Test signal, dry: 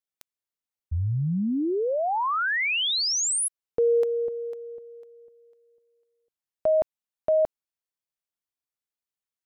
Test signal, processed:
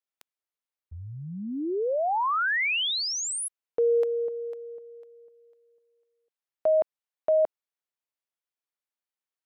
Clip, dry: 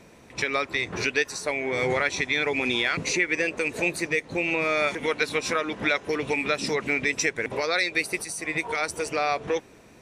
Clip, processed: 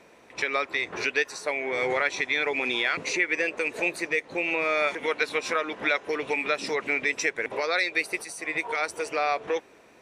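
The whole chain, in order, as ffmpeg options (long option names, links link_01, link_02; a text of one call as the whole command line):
ffmpeg -i in.wav -af "bass=frequency=250:gain=-14,treble=frequency=4000:gain=-6" out.wav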